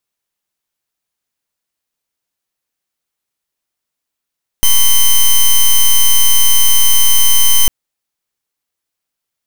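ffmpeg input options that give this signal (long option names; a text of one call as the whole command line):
ffmpeg -f lavfi -i "aevalsrc='0.447*(2*lt(mod(3080*t,1),0.08)-1)':duration=3.05:sample_rate=44100" out.wav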